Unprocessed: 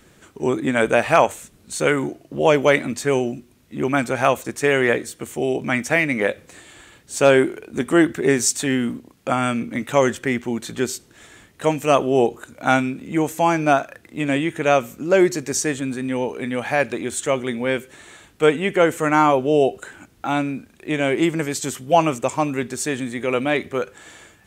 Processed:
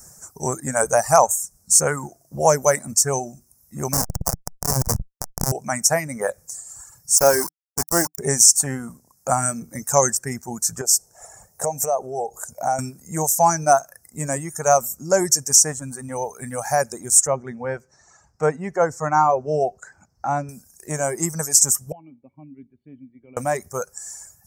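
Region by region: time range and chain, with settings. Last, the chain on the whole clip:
0:03.93–0:05.52: parametric band 200 Hz +14 dB 2 octaves + comparator with hysteresis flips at −12.5 dBFS + saturating transformer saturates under 260 Hz
0:07.17–0:08.19: parametric band 130 Hz −10.5 dB 0.47 octaves + centre clipping without the shift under −21.5 dBFS
0:10.81–0:12.79: flat-topped bell 580 Hz +9 dB 1.3 octaves + downward compressor 2.5 to 1, threshold −25 dBFS
0:17.27–0:20.49: high-pass filter 54 Hz + high-frequency loss of the air 190 metres
0:21.92–0:23.37: formant resonators in series i + tuned comb filter 280 Hz, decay 0.38 s, mix 50%
whole clip: reverb reduction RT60 1.3 s; drawn EQ curve 160 Hz 0 dB, 300 Hz −14 dB, 760 Hz +2 dB, 1,700 Hz −7 dB, 3,400 Hz −29 dB, 5,400 Hz +14 dB; boost into a limiter +3.5 dB; level −1 dB

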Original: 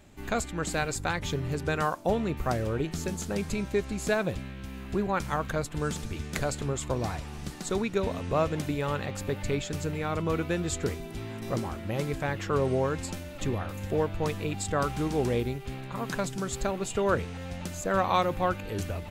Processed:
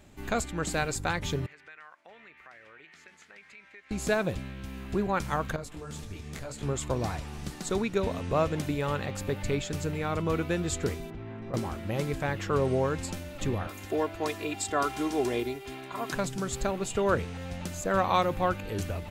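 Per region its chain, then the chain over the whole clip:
0:01.46–0:03.91: resonant band-pass 2,000 Hz, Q 3.4 + downward compressor 2.5 to 1, threshold −49 dBFS
0:05.56–0:06.63: notch filter 1,500 Hz, Q 29 + downward compressor, threshold −31 dBFS + micro pitch shift up and down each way 30 cents
0:11.10–0:11.54: low-pass filter 2,000 Hz + downward compressor 4 to 1, threshold −36 dBFS
0:13.67–0:16.12: high-pass filter 310 Hz 6 dB per octave + comb filter 2.9 ms, depth 71%
whole clip: no processing

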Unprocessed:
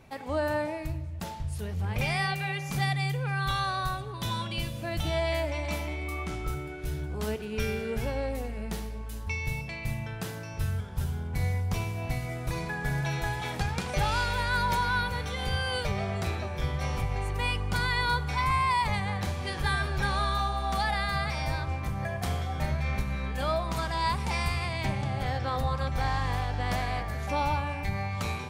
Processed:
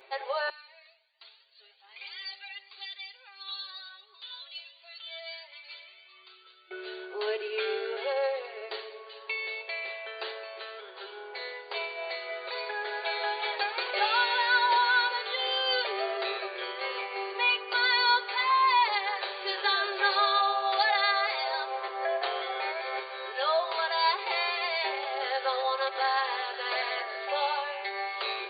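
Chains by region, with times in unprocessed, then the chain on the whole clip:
0:00.49–0:06.71: first difference + flanger whose copies keep moving one way rising 1.4 Hz
0:21.70–0:23.02: high-frequency loss of the air 86 metres + envelope flattener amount 50%
whole clip: brick-wall band-pass 350–4,700 Hz; high-shelf EQ 3,200 Hz +9 dB; comb filter 7.4 ms, depth 78%

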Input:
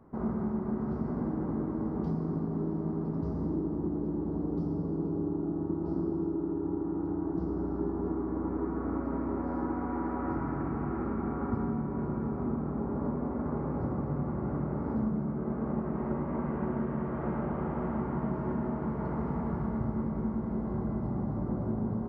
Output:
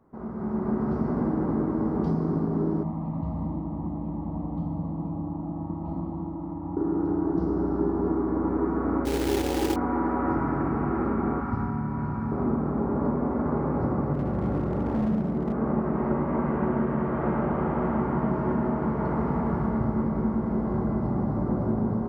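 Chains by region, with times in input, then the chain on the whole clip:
0:02.83–0:06.77: high-frequency loss of the air 76 metres + phaser with its sweep stopped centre 1,500 Hz, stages 6
0:09.05–0:09.76: flat-topped bell 1,400 Hz −15.5 dB 1.2 octaves + comb filter 2.3 ms, depth 64% + log-companded quantiser 4 bits
0:11.40–0:12.32: parametric band 430 Hz −13 dB 1.3 octaves + flutter between parallel walls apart 9.4 metres, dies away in 0.43 s
0:14.13–0:15.54: parametric band 1,100 Hz −5 dB 1.3 octaves + hard clipping −28 dBFS + flutter between parallel walls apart 11 metres, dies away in 0.53 s
whole clip: low-shelf EQ 260 Hz −4 dB; automatic gain control gain up to 12 dB; level −3.5 dB

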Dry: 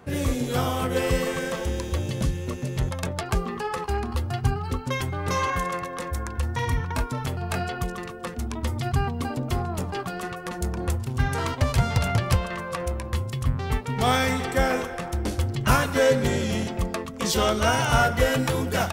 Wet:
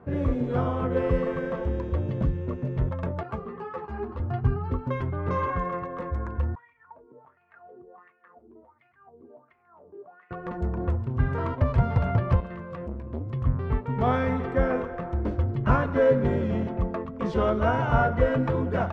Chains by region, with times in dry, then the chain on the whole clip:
0:03.23–0:04.20: high-pass filter 110 Hz + mains-hum notches 50/100/150/200/250/300/350/400 Hz + string-ensemble chorus
0:06.55–0:10.31: downward compressor 10 to 1, threshold −31 dBFS + mains-hum notches 60/120/180/240/300/360/420/480/540/600 Hz + LFO wah 1.4 Hz 360–2,400 Hz, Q 6.3
0:12.40–0:13.30: high-pass filter 52 Hz + parametric band 880 Hz −8.5 dB 2 octaves + saturating transformer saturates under 480 Hz
whole clip: low-pass filter 1,200 Hz 12 dB per octave; notch filter 790 Hz, Q 12

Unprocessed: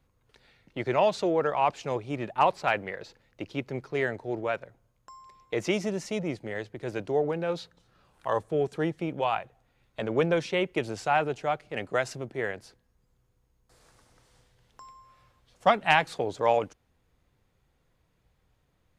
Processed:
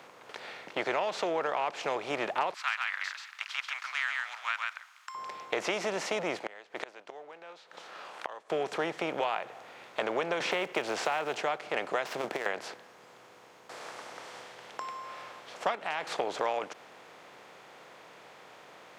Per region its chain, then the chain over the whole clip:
0:02.54–0:05.15: Butterworth high-pass 1,200 Hz 48 dB per octave + single-tap delay 135 ms −6 dB
0:06.39–0:08.50: meter weighting curve A + gate with flip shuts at −31 dBFS, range −33 dB
0:10.40–0:11.41: one scale factor per block 7 bits + multiband upward and downward compressor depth 70%
0:12.05–0:12.46: gap after every zero crossing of 0.058 ms + high-pass filter 150 Hz + compressor whose output falls as the input rises −36 dBFS, ratio −0.5
0:15.75–0:16.18: downward expander −42 dBFS + downward compressor 3 to 1, threshold −40 dBFS
whole clip: compressor on every frequency bin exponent 0.6; meter weighting curve A; downward compressor, threshold −27 dBFS

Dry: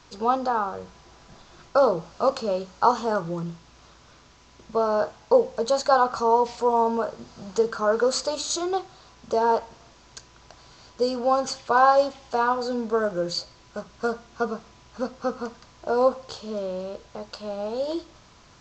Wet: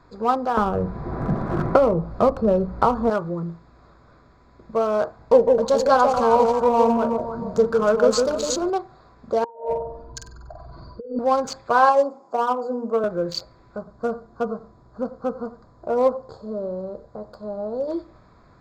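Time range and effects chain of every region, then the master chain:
0:00.57–0:03.10: RIAA equalisation playback + multiband upward and downward compressor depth 100%
0:05.18–0:08.70: low-shelf EQ 180 Hz +9 dB + delay that swaps between a low-pass and a high-pass 156 ms, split 890 Hz, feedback 59%, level −3 dB
0:09.44–0:11.19: expanding power law on the bin magnitudes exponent 2.5 + flutter between parallel walls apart 8.2 metres, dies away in 0.8 s + compressor whose output falls as the input rises −29 dBFS, ratio −0.5
0:11.89–0:13.04: high-pass filter 190 Hz 24 dB per octave + flat-topped bell 2,600 Hz −16 dB + mains-hum notches 60/120/180/240/300/360/420/480/540 Hz
0:13.78–0:17.88: parametric band 2,500 Hz −13.5 dB 1.2 octaves + single-tap delay 91 ms −16 dB
whole clip: adaptive Wiener filter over 15 samples; notch filter 870 Hz, Q 12; level +2.5 dB

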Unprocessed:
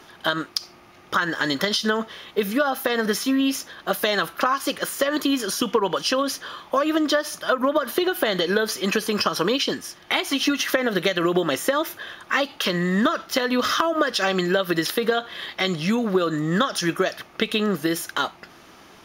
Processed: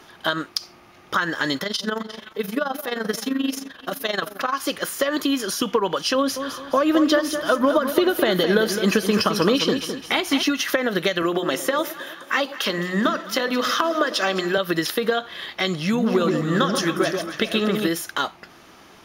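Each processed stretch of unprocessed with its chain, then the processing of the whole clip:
0:01.58–0:04.53: delay that swaps between a low-pass and a high-pass 182 ms, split 1,100 Hz, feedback 62%, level −12 dB + amplitude modulation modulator 23 Hz, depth 65%
0:06.15–0:10.43: low-shelf EQ 410 Hz +6 dB + repeating echo 212 ms, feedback 34%, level −8.5 dB
0:11.22–0:14.58: high-pass filter 160 Hz + mains-hum notches 60/120/180/240/300/360/420/480/540 Hz + delay that swaps between a low-pass and a high-pass 106 ms, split 850 Hz, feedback 71%, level −13 dB
0:15.79–0:17.88: delay that plays each chunk backwards 301 ms, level −10.5 dB + delay that swaps between a low-pass and a high-pass 135 ms, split 1,000 Hz, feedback 59%, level −4 dB
whole clip: no processing

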